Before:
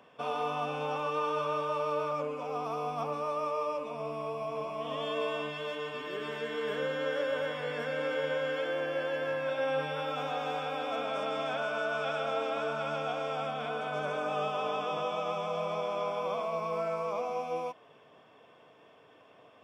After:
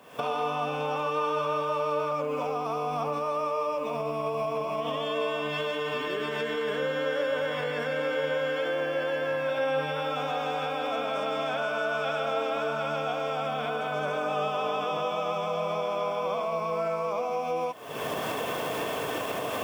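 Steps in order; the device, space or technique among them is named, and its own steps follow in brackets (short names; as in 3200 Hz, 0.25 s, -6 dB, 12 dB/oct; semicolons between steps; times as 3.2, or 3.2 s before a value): cheap recorder with automatic gain (white noise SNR 38 dB; recorder AGC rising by 64 dB/s); gain +3.5 dB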